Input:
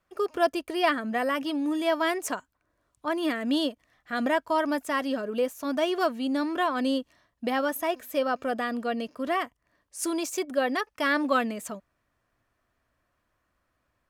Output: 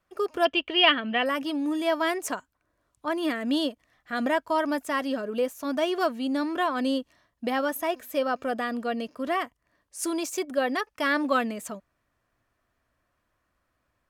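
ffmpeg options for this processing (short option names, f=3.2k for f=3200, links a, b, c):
-filter_complex "[0:a]asettb=1/sr,asplit=3[a][b][c];[a]atrim=end=0.454[d];[b]atrim=start=0.45:end=1.26,asetpts=PTS-STARTPTS,afade=t=in:d=0.004:c=qsin,afade=t=out:st=0.806:d=0.004:c=qsin,lowpass=f=3k:t=q:w=7.9[e];[c]atrim=start=1.256[f];[d][e]acrossfade=d=0.004:c1=hsin:c2=qsin[g];[g][f]acrossfade=d=0.004:c1=qsin:c2=hsin" -ar 48000 -c:a libvorbis -b:a 192k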